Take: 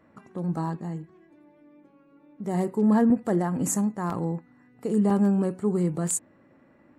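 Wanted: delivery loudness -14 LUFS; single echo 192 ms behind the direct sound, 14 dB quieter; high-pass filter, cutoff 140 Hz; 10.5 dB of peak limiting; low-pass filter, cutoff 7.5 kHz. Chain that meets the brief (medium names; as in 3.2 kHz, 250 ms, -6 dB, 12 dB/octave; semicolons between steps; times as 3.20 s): high-pass 140 Hz; low-pass 7.5 kHz; peak limiter -22.5 dBFS; delay 192 ms -14 dB; trim +18 dB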